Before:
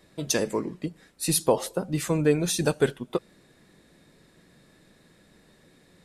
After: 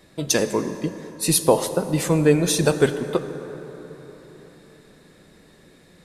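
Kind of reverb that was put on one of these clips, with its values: plate-style reverb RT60 4.3 s, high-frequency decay 0.45×, DRR 9.5 dB; trim +5 dB

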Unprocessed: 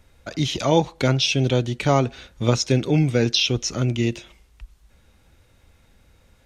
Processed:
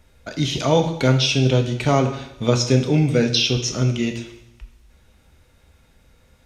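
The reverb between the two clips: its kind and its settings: two-slope reverb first 0.77 s, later 2.3 s, from -26 dB, DRR 4.5 dB

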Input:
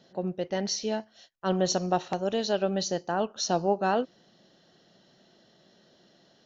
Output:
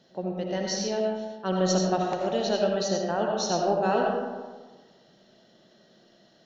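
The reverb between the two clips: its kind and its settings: algorithmic reverb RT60 1.4 s, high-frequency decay 0.45×, pre-delay 40 ms, DRR -0.5 dB; trim -1.5 dB

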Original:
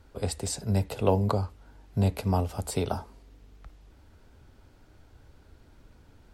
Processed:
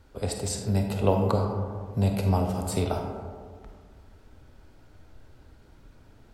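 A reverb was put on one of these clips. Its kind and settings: algorithmic reverb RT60 1.9 s, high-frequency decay 0.35×, pre-delay 5 ms, DRR 2.5 dB

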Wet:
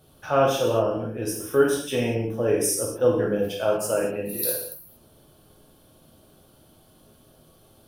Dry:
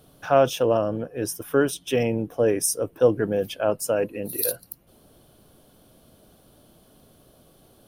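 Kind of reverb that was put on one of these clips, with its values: gated-style reverb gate 260 ms falling, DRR -3 dB; trim -4.5 dB

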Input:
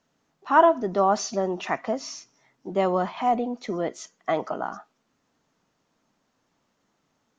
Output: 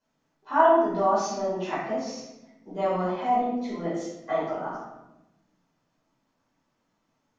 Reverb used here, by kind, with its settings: simulated room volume 360 m³, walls mixed, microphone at 5 m; trim -15.5 dB

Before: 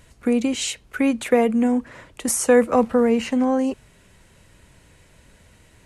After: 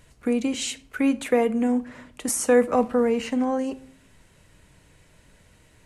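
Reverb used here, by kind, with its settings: simulated room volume 740 m³, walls furnished, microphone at 0.47 m; trim -3.5 dB

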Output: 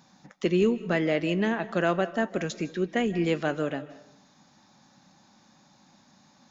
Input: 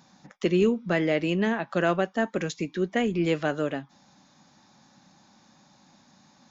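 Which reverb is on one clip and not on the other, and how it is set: algorithmic reverb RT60 0.78 s, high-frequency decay 0.6×, pre-delay 115 ms, DRR 15.5 dB; trim -1 dB

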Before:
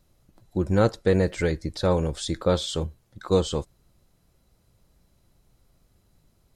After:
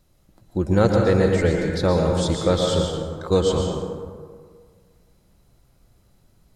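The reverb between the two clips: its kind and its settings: plate-style reverb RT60 1.8 s, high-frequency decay 0.45×, pre-delay 105 ms, DRR 1 dB; trim +2 dB

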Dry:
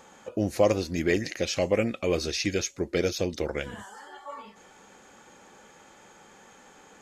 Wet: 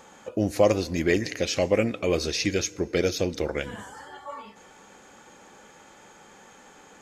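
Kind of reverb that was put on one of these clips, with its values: FDN reverb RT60 2.5 s, low-frequency decay 1×, high-frequency decay 0.5×, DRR 19.5 dB; trim +2 dB

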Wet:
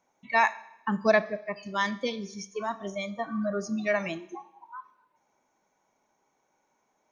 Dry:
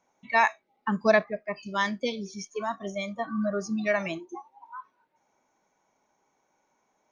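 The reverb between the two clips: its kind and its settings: Schroeder reverb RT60 0.84 s, combs from 28 ms, DRR 16.5 dB; trim -1 dB

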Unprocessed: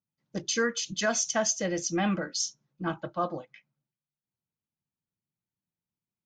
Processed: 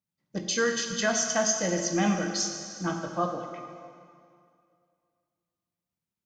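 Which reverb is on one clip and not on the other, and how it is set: plate-style reverb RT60 2.3 s, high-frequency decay 0.9×, DRR 3 dB

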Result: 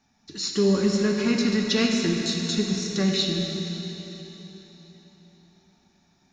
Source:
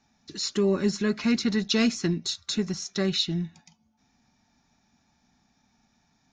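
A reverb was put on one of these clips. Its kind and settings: plate-style reverb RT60 4 s, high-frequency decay 0.9×, DRR 0 dB

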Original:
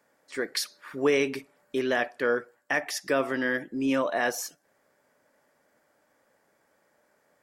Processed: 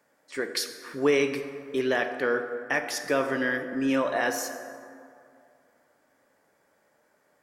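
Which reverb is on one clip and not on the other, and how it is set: plate-style reverb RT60 2.5 s, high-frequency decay 0.45×, DRR 7 dB

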